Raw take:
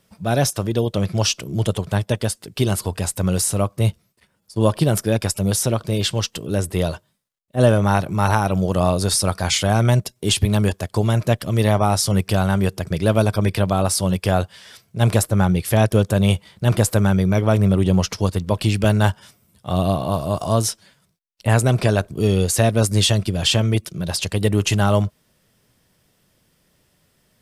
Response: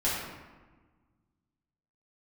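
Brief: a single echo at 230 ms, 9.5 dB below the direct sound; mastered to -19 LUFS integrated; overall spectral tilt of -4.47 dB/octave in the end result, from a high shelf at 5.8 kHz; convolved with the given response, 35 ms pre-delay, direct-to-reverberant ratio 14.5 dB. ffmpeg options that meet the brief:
-filter_complex "[0:a]highshelf=f=5800:g=7.5,aecho=1:1:230:0.335,asplit=2[s0][s1];[1:a]atrim=start_sample=2205,adelay=35[s2];[s1][s2]afir=irnorm=-1:irlink=0,volume=0.0631[s3];[s0][s3]amix=inputs=2:normalize=0,volume=0.891"

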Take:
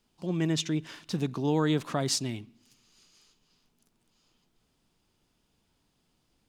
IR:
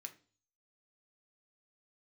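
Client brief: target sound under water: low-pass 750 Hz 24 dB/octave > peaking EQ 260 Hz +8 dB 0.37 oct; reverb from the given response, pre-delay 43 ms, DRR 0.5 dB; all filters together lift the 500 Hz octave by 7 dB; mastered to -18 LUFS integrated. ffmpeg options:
-filter_complex "[0:a]equalizer=f=500:t=o:g=8,asplit=2[s0][s1];[1:a]atrim=start_sample=2205,adelay=43[s2];[s1][s2]afir=irnorm=-1:irlink=0,volume=1.68[s3];[s0][s3]amix=inputs=2:normalize=0,lowpass=f=750:w=0.5412,lowpass=f=750:w=1.3066,equalizer=f=260:t=o:w=0.37:g=8,volume=2"

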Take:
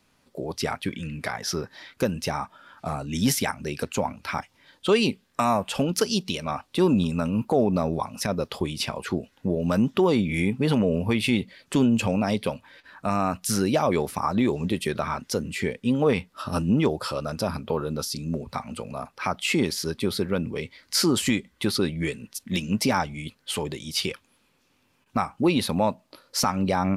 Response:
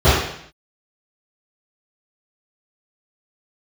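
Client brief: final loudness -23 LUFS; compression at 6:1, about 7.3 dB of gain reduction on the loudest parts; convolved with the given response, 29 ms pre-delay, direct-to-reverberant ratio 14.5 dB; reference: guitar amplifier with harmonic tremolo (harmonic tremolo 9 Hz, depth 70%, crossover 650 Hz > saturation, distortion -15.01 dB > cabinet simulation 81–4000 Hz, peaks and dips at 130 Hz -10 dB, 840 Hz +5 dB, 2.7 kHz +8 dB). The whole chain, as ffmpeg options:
-filter_complex "[0:a]acompressor=threshold=0.0631:ratio=6,asplit=2[s0][s1];[1:a]atrim=start_sample=2205,adelay=29[s2];[s1][s2]afir=irnorm=-1:irlink=0,volume=0.00841[s3];[s0][s3]amix=inputs=2:normalize=0,acrossover=split=650[s4][s5];[s4]aeval=exprs='val(0)*(1-0.7/2+0.7/2*cos(2*PI*9*n/s))':c=same[s6];[s5]aeval=exprs='val(0)*(1-0.7/2-0.7/2*cos(2*PI*9*n/s))':c=same[s7];[s6][s7]amix=inputs=2:normalize=0,asoftclip=threshold=0.0596,highpass=81,equalizer=f=130:t=q:w=4:g=-10,equalizer=f=840:t=q:w=4:g=5,equalizer=f=2700:t=q:w=4:g=8,lowpass=f=4000:w=0.5412,lowpass=f=4000:w=1.3066,volume=3.98"

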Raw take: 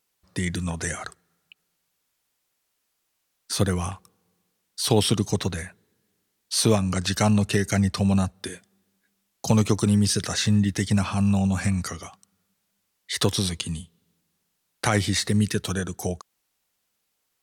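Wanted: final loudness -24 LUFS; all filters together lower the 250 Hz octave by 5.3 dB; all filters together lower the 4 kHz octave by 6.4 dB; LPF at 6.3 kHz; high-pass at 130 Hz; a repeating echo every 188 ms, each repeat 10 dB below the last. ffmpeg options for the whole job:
-af "highpass=130,lowpass=6300,equalizer=f=250:t=o:g=-6.5,equalizer=f=4000:t=o:g=-7,aecho=1:1:188|376|564|752:0.316|0.101|0.0324|0.0104,volume=1.78"

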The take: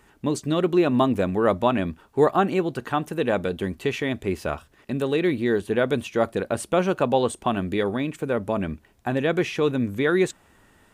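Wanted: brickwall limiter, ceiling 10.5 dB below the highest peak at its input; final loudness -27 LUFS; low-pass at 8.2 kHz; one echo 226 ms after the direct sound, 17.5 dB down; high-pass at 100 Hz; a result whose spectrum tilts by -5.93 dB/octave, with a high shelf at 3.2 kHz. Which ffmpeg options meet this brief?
-af "highpass=100,lowpass=8200,highshelf=f=3200:g=-5.5,alimiter=limit=0.15:level=0:latency=1,aecho=1:1:226:0.133,volume=1.12"

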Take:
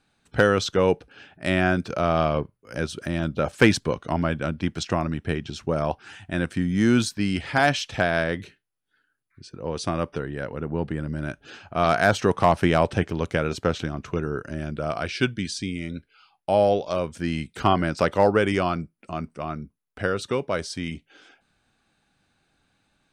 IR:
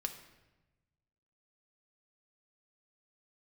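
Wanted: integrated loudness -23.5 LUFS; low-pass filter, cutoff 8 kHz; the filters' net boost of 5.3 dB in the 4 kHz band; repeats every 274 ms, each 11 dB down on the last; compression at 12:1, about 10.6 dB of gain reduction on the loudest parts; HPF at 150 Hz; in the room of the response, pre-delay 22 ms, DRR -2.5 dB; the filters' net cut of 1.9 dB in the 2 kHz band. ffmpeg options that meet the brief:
-filter_complex "[0:a]highpass=150,lowpass=8000,equalizer=f=2000:t=o:g=-4.5,equalizer=f=4000:t=o:g=8.5,acompressor=threshold=0.0708:ratio=12,aecho=1:1:274|548|822:0.282|0.0789|0.0221,asplit=2[s0][s1];[1:a]atrim=start_sample=2205,adelay=22[s2];[s1][s2]afir=irnorm=-1:irlink=0,volume=1.33[s3];[s0][s3]amix=inputs=2:normalize=0,volume=1.33"

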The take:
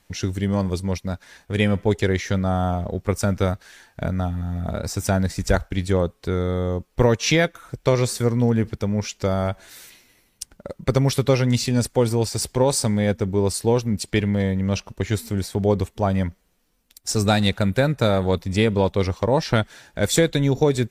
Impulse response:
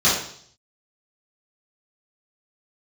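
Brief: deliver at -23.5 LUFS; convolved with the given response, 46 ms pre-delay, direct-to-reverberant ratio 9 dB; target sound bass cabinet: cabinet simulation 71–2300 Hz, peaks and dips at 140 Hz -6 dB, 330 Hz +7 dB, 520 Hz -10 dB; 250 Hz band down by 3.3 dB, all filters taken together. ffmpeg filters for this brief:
-filter_complex "[0:a]equalizer=f=250:t=o:g=-6,asplit=2[s0][s1];[1:a]atrim=start_sample=2205,adelay=46[s2];[s1][s2]afir=irnorm=-1:irlink=0,volume=0.0376[s3];[s0][s3]amix=inputs=2:normalize=0,highpass=f=71:w=0.5412,highpass=f=71:w=1.3066,equalizer=f=140:t=q:w=4:g=-6,equalizer=f=330:t=q:w=4:g=7,equalizer=f=520:t=q:w=4:g=-10,lowpass=f=2300:w=0.5412,lowpass=f=2300:w=1.3066,volume=1.19"

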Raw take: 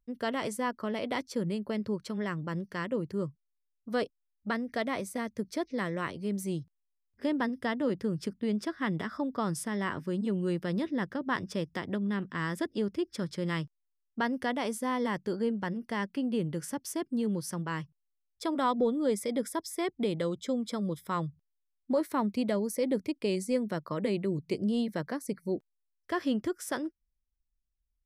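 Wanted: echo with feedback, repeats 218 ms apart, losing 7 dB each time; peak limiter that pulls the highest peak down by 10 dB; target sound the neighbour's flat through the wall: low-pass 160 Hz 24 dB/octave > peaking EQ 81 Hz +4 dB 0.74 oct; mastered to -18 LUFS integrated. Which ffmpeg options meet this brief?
-af "alimiter=level_in=1.41:limit=0.0631:level=0:latency=1,volume=0.708,lowpass=f=160:w=0.5412,lowpass=f=160:w=1.3066,equalizer=f=81:t=o:w=0.74:g=4,aecho=1:1:218|436|654|872|1090:0.447|0.201|0.0905|0.0407|0.0183,volume=26.6"

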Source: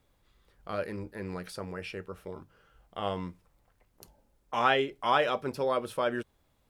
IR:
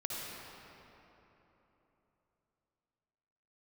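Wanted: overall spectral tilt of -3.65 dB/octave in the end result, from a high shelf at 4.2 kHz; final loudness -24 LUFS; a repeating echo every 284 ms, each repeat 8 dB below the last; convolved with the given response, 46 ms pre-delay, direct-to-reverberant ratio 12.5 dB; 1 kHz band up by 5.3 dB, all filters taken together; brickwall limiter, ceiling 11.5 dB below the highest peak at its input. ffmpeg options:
-filter_complex "[0:a]equalizer=f=1000:t=o:g=7,highshelf=f=4200:g=-6,alimiter=limit=0.112:level=0:latency=1,aecho=1:1:284|568|852|1136|1420:0.398|0.159|0.0637|0.0255|0.0102,asplit=2[s0][s1];[1:a]atrim=start_sample=2205,adelay=46[s2];[s1][s2]afir=irnorm=-1:irlink=0,volume=0.168[s3];[s0][s3]amix=inputs=2:normalize=0,volume=2.66"

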